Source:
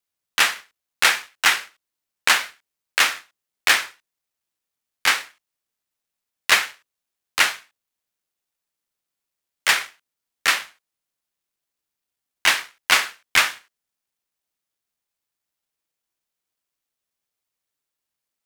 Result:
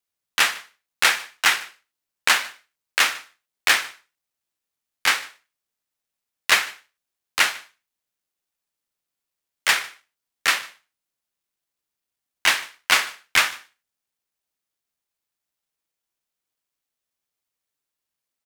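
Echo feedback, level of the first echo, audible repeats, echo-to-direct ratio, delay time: no regular repeats, -22.5 dB, 1, -22.5 dB, 150 ms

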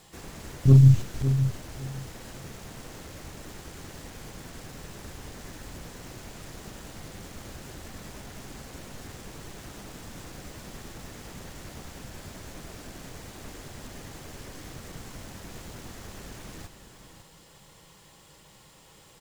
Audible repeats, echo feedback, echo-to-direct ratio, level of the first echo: 2, 21%, -10.0 dB, -10.0 dB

